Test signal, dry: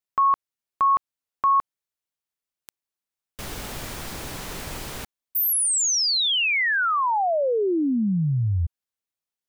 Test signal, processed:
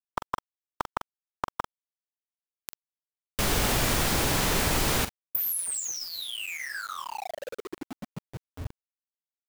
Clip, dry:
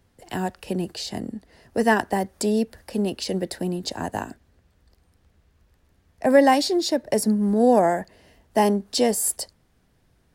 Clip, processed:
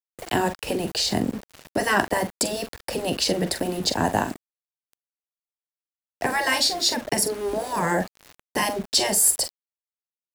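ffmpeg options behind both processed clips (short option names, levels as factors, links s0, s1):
-filter_complex "[0:a]asplit=2[s0][s1];[s1]acompressor=threshold=0.0316:ratio=16:attack=0.5:release=316:knee=1:detection=rms,volume=1.12[s2];[s0][s2]amix=inputs=2:normalize=0,afftfilt=real='re*lt(hypot(re,im),0.501)':imag='im*lt(hypot(re,im),0.501)':win_size=1024:overlap=0.75,asplit=2[s3][s4];[s4]adelay=44,volume=0.299[s5];[s3][s5]amix=inputs=2:normalize=0,acontrast=81,aeval=exprs='val(0)*gte(abs(val(0)),0.0237)':c=same,volume=0.75"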